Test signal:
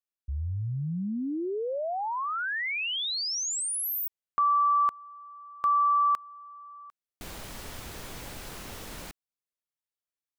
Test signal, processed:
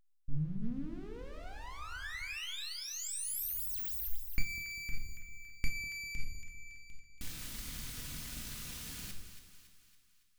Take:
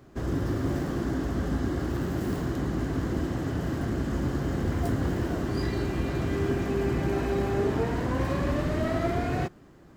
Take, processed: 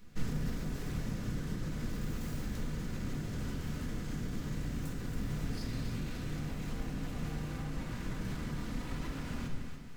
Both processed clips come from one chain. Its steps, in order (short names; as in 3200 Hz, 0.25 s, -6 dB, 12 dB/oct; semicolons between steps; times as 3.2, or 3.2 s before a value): notches 50/100 Hz; dynamic EQ 2400 Hz, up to -7 dB, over -43 dBFS, Q 0.89; full-wave rectifier; shoebox room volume 800 m³, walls furnished, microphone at 1.9 m; compressor, threshold -15 dBFS; split-band echo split 960 Hz, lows 0.199 s, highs 0.28 s, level -10.5 dB; limiter -13 dBFS; passive tone stack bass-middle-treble 6-0-2; gain +14.5 dB